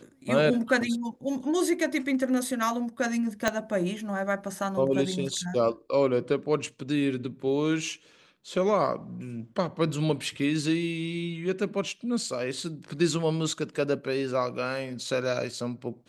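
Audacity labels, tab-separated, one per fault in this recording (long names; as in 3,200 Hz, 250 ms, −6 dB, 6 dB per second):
3.480000	3.480000	click −9 dBFS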